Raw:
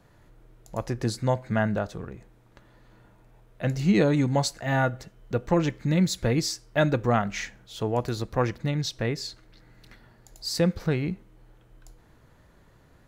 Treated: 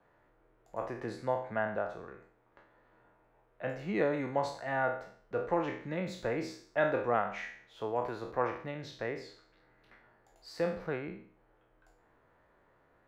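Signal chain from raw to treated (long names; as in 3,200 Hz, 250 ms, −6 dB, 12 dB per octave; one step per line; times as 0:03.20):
peak hold with a decay on every bin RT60 0.53 s
three-way crossover with the lows and the highs turned down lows −14 dB, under 350 Hz, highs −20 dB, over 2,400 Hz
level −5.5 dB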